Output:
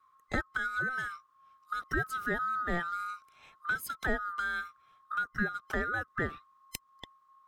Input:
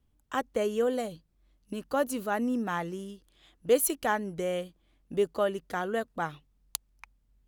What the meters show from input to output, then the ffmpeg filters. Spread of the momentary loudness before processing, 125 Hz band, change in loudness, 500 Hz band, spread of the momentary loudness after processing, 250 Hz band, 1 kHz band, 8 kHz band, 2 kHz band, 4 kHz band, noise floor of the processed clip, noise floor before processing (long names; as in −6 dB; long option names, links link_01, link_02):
12 LU, +0.5 dB, −3.0 dB, −13.0 dB, 13 LU, −7.5 dB, −1.0 dB, −13.0 dB, +7.0 dB, −5.0 dB, −68 dBFS, −70 dBFS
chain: -filter_complex "[0:a]afftfilt=real='real(if(lt(b,960),b+48*(1-2*mod(floor(b/48),2)),b),0)':imag='imag(if(lt(b,960),b+48*(1-2*mod(floor(b/48),2)),b),0)':win_size=2048:overlap=0.75,acrossover=split=470[link_01][link_02];[link_02]acompressor=threshold=-35dB:ratio=6[link_03];[link_01][link_03]amix=inputs=2:normalize=0,highshelf=frequency=5700:gain=-8.5,volume=4dB"